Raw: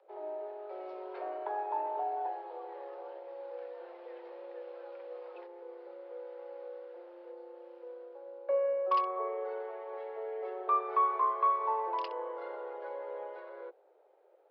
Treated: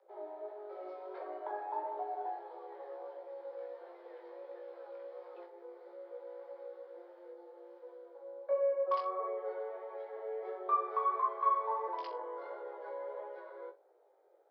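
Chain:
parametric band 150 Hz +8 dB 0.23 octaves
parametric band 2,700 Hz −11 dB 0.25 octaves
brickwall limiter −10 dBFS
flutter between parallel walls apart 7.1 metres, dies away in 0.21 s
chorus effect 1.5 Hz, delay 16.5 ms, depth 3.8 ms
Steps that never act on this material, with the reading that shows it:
parametric band 150 Hz: nothing at its input below 340 Hz
brickwall limiter −10 dBFS: peak of its input −18.0 dBFS

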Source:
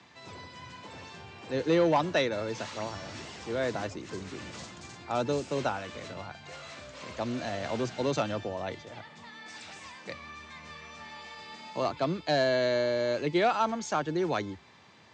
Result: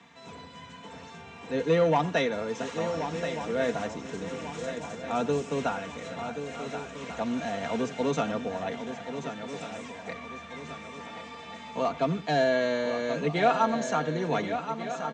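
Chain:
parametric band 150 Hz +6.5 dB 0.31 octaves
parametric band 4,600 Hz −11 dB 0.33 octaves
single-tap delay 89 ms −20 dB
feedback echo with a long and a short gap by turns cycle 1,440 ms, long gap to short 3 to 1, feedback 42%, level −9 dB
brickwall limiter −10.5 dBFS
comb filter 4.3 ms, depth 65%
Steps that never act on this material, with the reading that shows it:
brickwall limiter −10.5 dBFS: peak of its input −13.5 dBFS

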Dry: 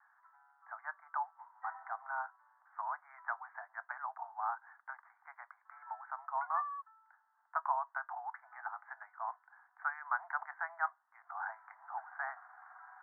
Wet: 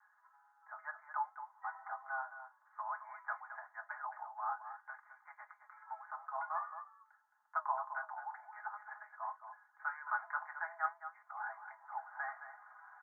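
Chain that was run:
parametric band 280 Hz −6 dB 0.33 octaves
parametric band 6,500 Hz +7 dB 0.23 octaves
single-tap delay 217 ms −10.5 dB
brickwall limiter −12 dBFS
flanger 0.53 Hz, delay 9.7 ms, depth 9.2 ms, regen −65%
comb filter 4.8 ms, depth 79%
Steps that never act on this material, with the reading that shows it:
parametric band 280 Hz: nothing at its input below 570 Hz
parametric band 6,500 Hz: nothing at its input above 2,000 Hz
brickwall limiter −12 dBFS: peak of its input −20.0 dBFS

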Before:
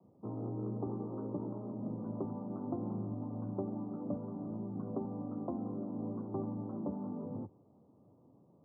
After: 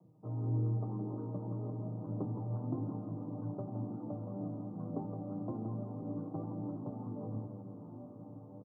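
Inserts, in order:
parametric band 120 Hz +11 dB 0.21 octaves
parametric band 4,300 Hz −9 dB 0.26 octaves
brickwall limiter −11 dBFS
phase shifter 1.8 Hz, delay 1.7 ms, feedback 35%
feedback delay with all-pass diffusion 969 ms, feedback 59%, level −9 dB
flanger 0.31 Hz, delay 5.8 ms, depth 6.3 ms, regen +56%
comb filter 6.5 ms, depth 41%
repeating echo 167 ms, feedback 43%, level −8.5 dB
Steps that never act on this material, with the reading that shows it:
parametric band 4,300 Hz: nothing at its input above 910 Hz
brickwall limiter −11 dBFS: peak of its input −23.5 dBFS

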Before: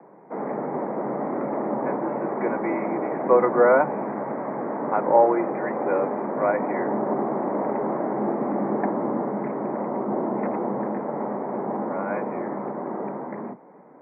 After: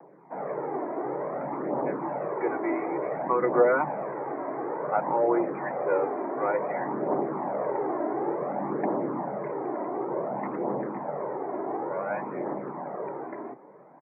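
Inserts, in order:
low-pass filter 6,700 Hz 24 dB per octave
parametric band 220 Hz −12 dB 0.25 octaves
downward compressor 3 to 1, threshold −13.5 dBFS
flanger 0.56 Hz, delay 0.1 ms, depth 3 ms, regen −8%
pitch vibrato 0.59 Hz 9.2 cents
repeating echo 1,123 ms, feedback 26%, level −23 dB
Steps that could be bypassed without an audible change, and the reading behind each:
low-pass filter 6,700 Hz: nothing at its input above 2,000 Hz

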